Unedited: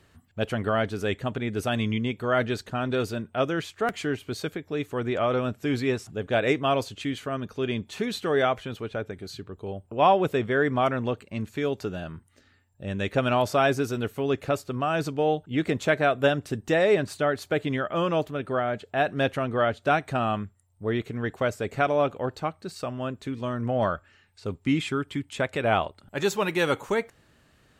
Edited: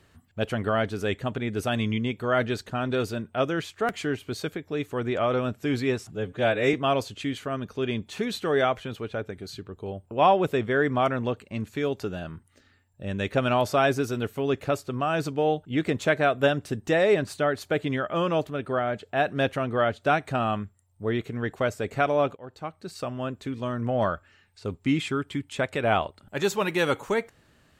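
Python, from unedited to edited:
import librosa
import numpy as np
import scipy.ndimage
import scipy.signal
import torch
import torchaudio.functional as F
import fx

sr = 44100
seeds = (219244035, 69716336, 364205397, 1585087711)

y = fx.edit(x, sr, fx.stretch_span(start_s=6.15, length_s=0.39, factor=1.5),
    fx.fade_in_from(start_s=22.16, length_s=0.64, floor_db=-21.0), tone=tone)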